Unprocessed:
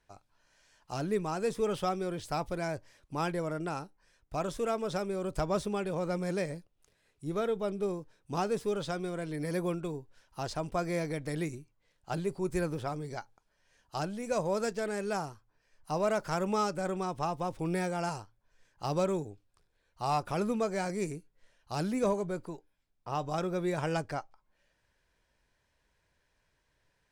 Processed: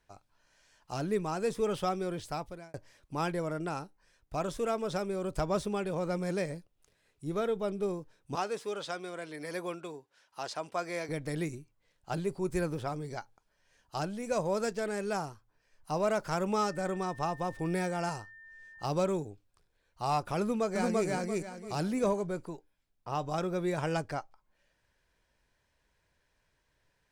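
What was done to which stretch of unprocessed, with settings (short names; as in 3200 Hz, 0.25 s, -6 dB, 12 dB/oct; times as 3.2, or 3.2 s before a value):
2.18–2.74 fade out
8.35–11.09 weighting filter A
16.61–18.84 whine 1800 Hz -50 dBFS
20.41–21.08 echo throw 0.34 s, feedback 30%, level -0.5 dB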